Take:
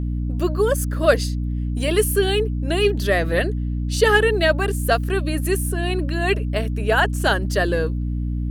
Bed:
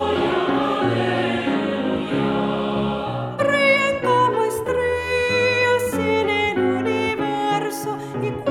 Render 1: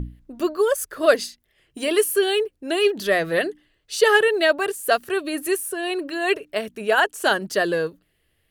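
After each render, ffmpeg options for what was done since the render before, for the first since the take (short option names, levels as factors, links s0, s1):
-af "bandreject=f=60:t=h:w=6,bandreject=f=120:t=h:w=6,bandreject=f=180:t=h:w=6,bandreject=f=240:t=h:w=6,bandreject=f=300:t=h:w=6"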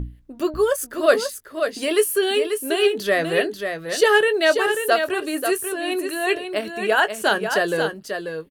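-filter_complex "[0:a]asplit=2[s0][s1];[s1]adelay=19,volume=0.237[s2];[s0][s2]amix=inputs=2:normalize=0,asplit=2[s3][s4];[s4]aecho=0:1:539:0.447[s5];[s3][s5]amix=inputs=2:normalize=0"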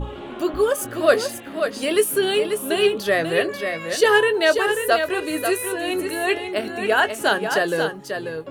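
-filter_complex "[1:a]volume=0.168[s0];[0:a][s0]amix=inputs=2:normalize=0"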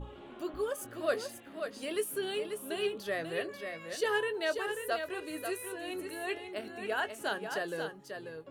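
-af "volume=0.178"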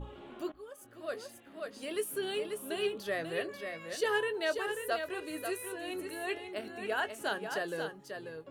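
-filter_complex "[0:a]asplit=2[s0][s1];[s0]atrim=end=0.52,asetpts=PTS-STARTPTS,afade=t=out:st=0.516:d=0.004:c=hsin:silence=0.125893[s2];[s1]atrim=start=0.52,asetpts=PTS-STARTPTS,afade=t=in:d=1.79:silence=0.125893[s3];[s2][s3]concat=n=2:v=0:a=1"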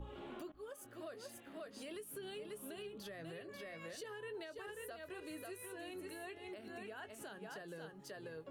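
-filter_complex "[0:a]acrossover=split=200[s0][s1];[s1]acompressor=threshold=0.00708:ratio=6[s2];[s0][s2]amix=inputs=2:normalize=0,alimiter=level_in=5.96:limit=0.0631:level=0:latency=1:release=151,volume=0.168"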